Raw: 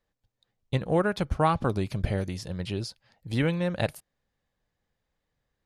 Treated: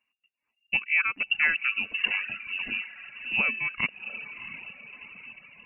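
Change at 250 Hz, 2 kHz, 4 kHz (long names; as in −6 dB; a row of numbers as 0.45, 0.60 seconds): −16.5, +13.0, +6.5 decibels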